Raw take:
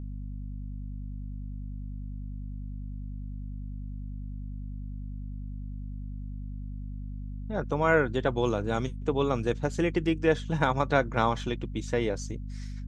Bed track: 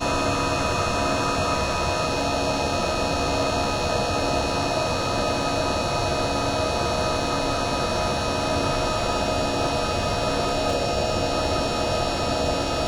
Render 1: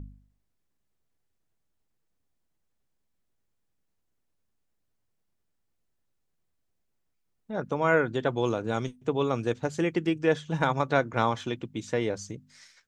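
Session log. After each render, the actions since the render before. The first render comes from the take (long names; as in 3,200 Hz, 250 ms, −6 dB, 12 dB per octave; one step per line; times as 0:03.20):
hum removal 50 Hz, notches 5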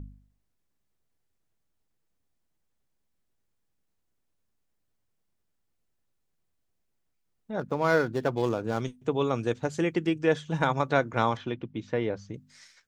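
0:07.59–0:08.81: running median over 15 samples
0:11.37–0:12.34: high-frequency loss of the air 230 metres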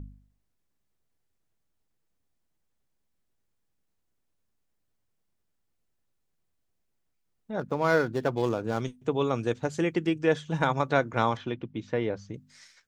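no processing that can be heard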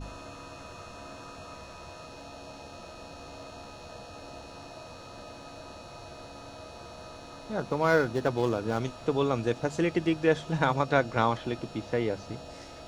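mix in bed track −21.5 dB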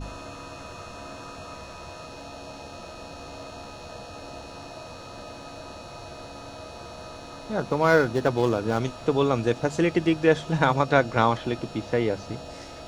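level +4.5 dB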